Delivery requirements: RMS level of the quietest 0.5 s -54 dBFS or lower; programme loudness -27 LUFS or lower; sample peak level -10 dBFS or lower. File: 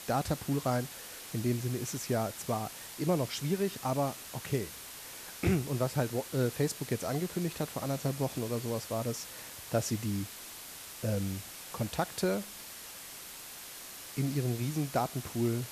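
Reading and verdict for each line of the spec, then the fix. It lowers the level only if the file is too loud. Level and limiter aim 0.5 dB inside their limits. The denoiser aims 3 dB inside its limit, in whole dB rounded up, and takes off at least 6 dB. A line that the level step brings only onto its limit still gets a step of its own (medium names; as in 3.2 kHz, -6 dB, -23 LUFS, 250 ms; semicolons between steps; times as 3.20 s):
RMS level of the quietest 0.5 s -46 dBFS: fail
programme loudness -34.5 LUFS: pass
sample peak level -16.0 dBFS: pass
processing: noise reduction 11 dB, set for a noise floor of -46 dBFS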